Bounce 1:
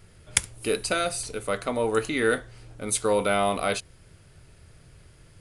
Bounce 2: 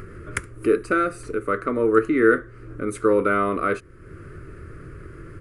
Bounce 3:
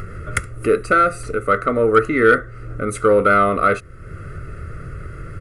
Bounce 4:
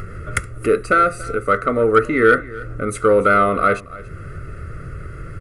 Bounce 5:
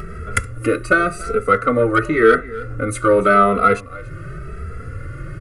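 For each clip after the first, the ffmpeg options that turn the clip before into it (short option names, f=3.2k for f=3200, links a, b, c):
-filter_complex "[0:a]firequalizer=gain_entry='entry(200,0);entry(340,11);entry(800,-16);entry(1200,8);entry(3400,-19);entry(5200,-18);entry(7800,-16)':delay=0.05:min_phase=1,asplit=2[a][b];[b]acompressor=mode=upward:threshold=-23dB:ratio=2.5,volume=2dB[c];[a][c]amix=inputs=2:normalize=0,volume=-5.5dB"
-af "aecho=1:1:1.5:0.57,acontrast=43"
-af "aecho=1:1:285:0.106"
-filter_complex "[0:a]asplit=2[a][b];[b]adelay=2.7,afreqshift=0.9[c];[a][c]amix=inputs=2:normalize=1,volume=4.5dB"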